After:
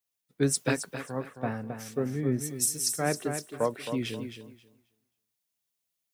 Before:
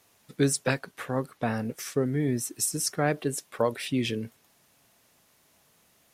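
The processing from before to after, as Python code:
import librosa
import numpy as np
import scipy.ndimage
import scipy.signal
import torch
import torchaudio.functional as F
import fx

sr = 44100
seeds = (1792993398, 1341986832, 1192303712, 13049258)

p1 = fx.dmg_noise_colour(x, sr, seeds[0], colour='violet', level_db=-64.0)
p2 = p1 + fx.echo_feedback(p1, sr, ms=268, feedback_pct=34, wet_db=-6.0, dry=0)
p3 = fx.band_widen(p2, sr, depth_pct=70)
y = p3 * librosa.db_to_amplitude(-4.5)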